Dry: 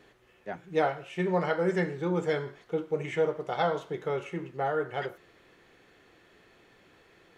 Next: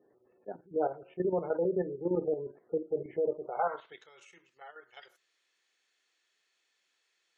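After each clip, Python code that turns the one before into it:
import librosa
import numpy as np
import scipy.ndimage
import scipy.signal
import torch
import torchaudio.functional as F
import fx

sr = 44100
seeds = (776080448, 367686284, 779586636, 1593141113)

y = fx.filter_sweep_bandpass(x, sr, from_hz=400.0, to_hz=6600.0, start_s=3.44, end_s=4.12, q=1.2)
y = fx.spec_gate(y, sr, threshold_db=-25, keep='strong')
y = fx.level_steps(y, sr, step_db=10)
y = F.gain(torch.from_numpy(y), 2.5).numpy()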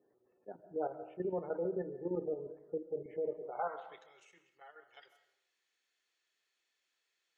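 y = fx.rev_freeverb(x, sr, rt60_s=0.79, hf_ratio=0.75, predelay_ms=95, drr_db=12.5)
y = F.gain(torch.from_numpy(y), -6.5).numpy()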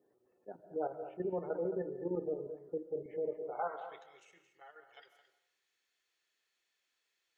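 y = x + 10.0 ** (-12.5 / 20.0) * np.pad(x, (int(219 * sr / 1000.0), 0))[:len(x)]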